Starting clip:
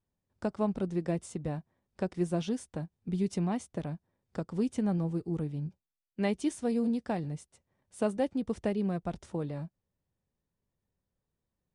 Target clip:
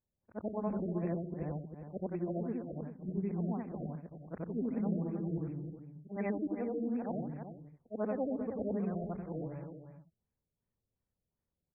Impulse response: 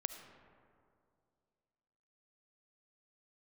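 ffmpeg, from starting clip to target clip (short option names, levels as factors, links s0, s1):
-filter_complex "[0:a]afftfilt=real='re':imag='-im':win_size=8192:overlap=0.75,asplit=2[s0][s1];[s1]adelay=314.9,volume=0.355,highshelf=f=4000:g=-7.08[s2];[s0][s2]amix=inputs=2:normalize=0,afftfilt=real='re*lt(b*sr/1024,710*pow(2700/710,0.5+0.5*sin(2*PI*2.7*pts/sr)))':imag='im*lt(b*sr/1024,710*pow(2700/710,0.5+0.5*sin(2*PI*2.7*pts/sr)))':win_size=1024:overlap=0.75"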